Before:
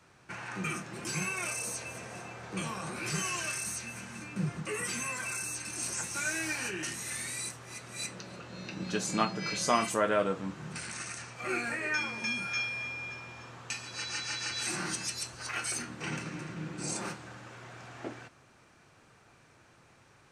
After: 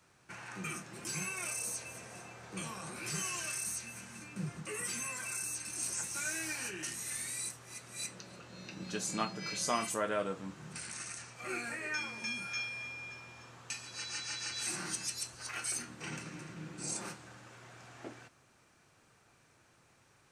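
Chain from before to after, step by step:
high-shelf EQ 6,400 Hz +9 dB
level −6.5 dB

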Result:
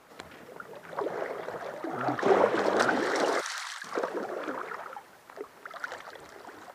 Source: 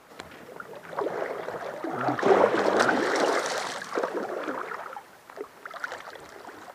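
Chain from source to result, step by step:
0:03.41–0:03.84: high-pass filter 1,100 Hz 24 dB per octave
level −3 dB

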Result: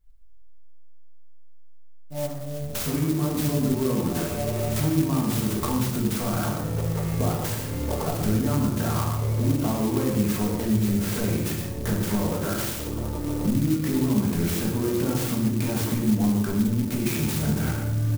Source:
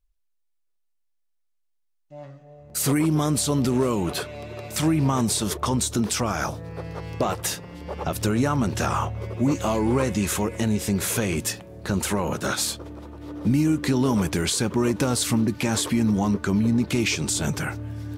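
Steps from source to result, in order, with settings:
on a send: multi-tap delay 73/117 ms −17.5/−10.5 dB
on the sum: downward compressor 5 to 1, threshold −34 dBFS, peak gain reduction 15.5 dB
low-shelf EQ 190 Hz +6 dB
rectangular room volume 320 cubic metres, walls mixed, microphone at 1.6 metres
converter with an unsteady clock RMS 0.082 ms
level +3 dB

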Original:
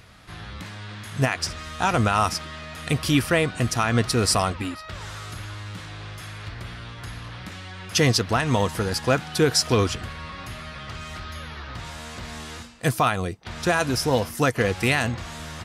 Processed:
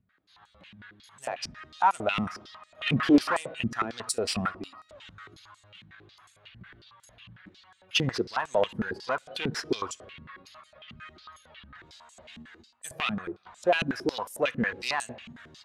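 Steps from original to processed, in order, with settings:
spectral dynamics exaggerated over time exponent 1.5
0:02.81–0:03.37: mid-hump overdrive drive 30 dB, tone 1,000 Hz, clips at −9.5 dBFS
in parallel at −2 dB: output level in coarse steps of 16 dB
on the sum: asymmetric clip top −23 dBFS
on a send at −16 dB: convolution reverb RT60 1.1 s, pre-delay 3 ms
on the sum: band-pass on a step sequencer 11 Hz 210–7,900 Hz
level +7.5 dB

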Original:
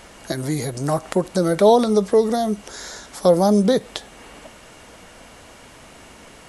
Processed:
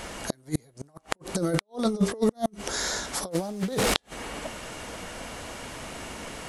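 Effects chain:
0:03.31–0:03.94: linear delta modulator 64 kbit/s, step −22.5 dBFS
hum removal 396.7 Hz, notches 35
compressor whose output falls as the input rises −23 dBFS, ratio −0.5
gate with flip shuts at −12 dBFS, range −36 dB

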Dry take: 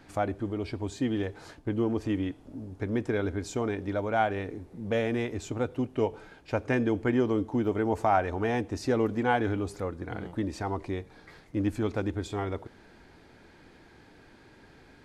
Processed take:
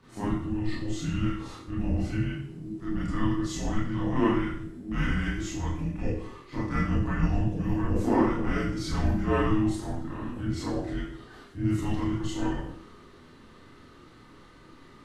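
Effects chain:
frequency shifter −420 Hz
transient designer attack −6 dB, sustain +1 dB
four-comb reverb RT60 0.57 s, combs from 25 ms, DRR −9.5 dB
level −6 dB

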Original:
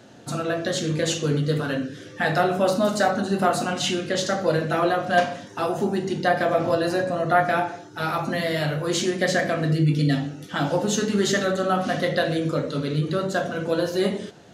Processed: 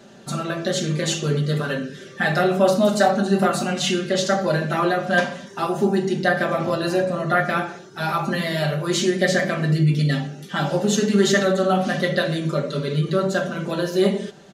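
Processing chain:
comb filter 5.1 ms, depth 81%

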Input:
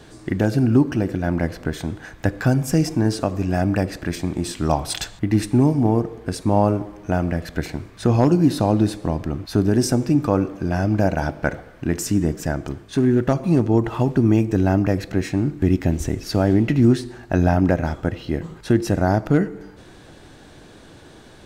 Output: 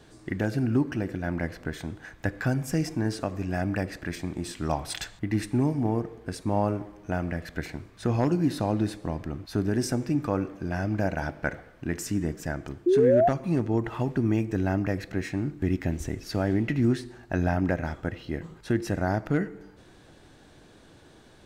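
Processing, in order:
dynamic equaliser 1,900 Hz, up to +6 dB, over −43 dBFS, Q 1.6
sound drawn into the spectrogram rise, 0:12.86–0:13.29, 340–740 Hz −11 dBFS
level −8.5 dB

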